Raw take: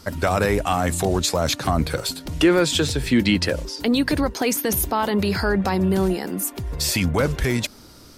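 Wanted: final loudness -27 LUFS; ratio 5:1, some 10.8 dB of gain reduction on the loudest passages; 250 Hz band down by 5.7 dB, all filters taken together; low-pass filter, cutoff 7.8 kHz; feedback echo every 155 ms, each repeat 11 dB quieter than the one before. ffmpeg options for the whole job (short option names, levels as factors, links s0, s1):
-af "lowpass=7800,equalizer=f=250:t=o:g=-8,acompressor=threshold=0.0355:ratio=5,aecho=1:1:155|310|465:0.282|0.0789|0.0221,volume=1.78"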